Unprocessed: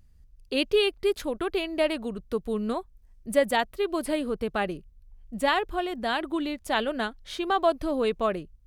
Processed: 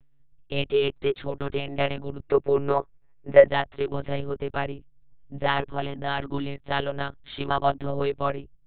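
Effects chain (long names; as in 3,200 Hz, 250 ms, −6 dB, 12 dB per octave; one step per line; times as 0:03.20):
one-pitch LPC vocoder at 8 kHz 140 Hz
gain on a spectral selection 0:02.20–0:03.48, 310–2,800 Hz +9 dB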